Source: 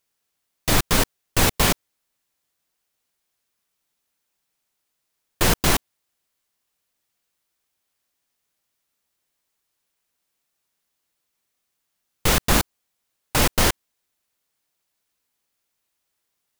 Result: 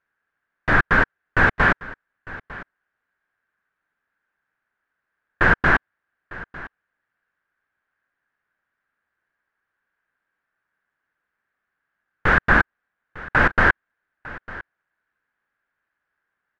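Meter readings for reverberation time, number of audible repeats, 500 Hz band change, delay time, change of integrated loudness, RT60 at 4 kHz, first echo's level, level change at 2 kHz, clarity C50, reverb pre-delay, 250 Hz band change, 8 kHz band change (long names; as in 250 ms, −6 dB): no reverb audible, 1, 0.0 dB, 902 ms, +2.0 dB, no reverb audible, −19.0 dB, +10.5 dB, no reverb audible, no reverb audible, −0.5 dB, below −25 dB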